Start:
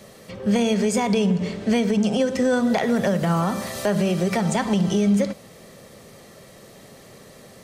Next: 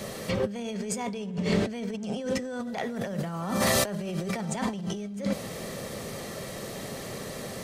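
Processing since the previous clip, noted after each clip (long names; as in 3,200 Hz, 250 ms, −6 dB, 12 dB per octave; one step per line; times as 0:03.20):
compressor whose output falls as the input rises −31 dBFS, ratio −1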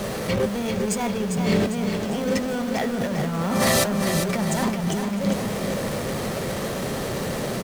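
in parallel at −4 dB: comparator with hysteresis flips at −38 dBFS
on the sum: repeating echo 400 ms, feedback 47%, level −6.5 dB
level +2.5 dB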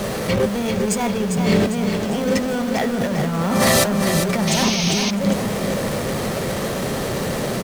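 sound drawn into the spectrogram noise, 0:04.47–0:05.11, 2,100–6,600 Hz −28 dBFS
level +4 dB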